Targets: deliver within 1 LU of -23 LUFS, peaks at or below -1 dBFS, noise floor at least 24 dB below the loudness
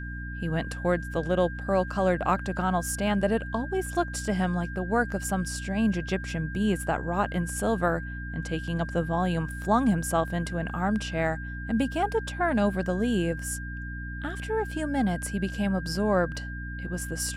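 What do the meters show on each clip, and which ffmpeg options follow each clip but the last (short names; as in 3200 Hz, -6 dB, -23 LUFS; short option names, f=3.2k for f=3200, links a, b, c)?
hum 60 Hz; harmonics up to 300 Hz; hum level -34 dBFS; steady tone 1600 Hz; tone level -39 dBFS; loudness -28.0 LUFS; peak -11.5 dBFS; loudness target -23.0 LUFS
-> -af "bandreject=f=60:t=h:w=6,bandreject=f=120:t=h:w=6,bandreject=f=180:t=h:w=6,bandreject=f=240:t=h:w=6,bandreject=f=300:t=h:w=6"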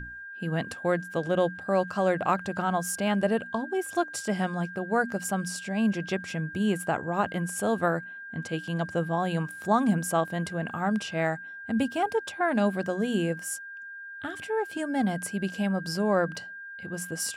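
hum none; steady tone 1600 Hz; tone level -39 dBFS
-> -af "bandreject=f=1.6k:w=30"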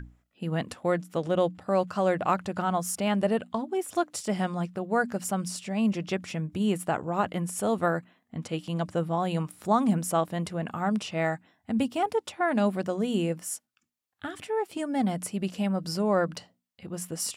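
steady tone none; loudness -29.0 LUFS; peak -12.0 dBFS; loudness target -23.0 LUFS
-> -af "volume=6dB"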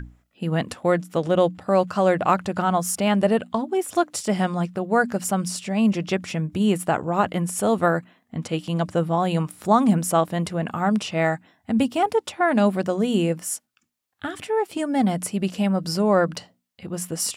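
loudness -23.0 LUFS; peak -6.0 dBFS; noise floor -70 dBFS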